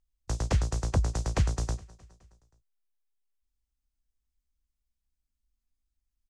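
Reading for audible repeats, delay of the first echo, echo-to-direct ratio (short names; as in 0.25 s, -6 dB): 3, 0.209 s, -20.5 dB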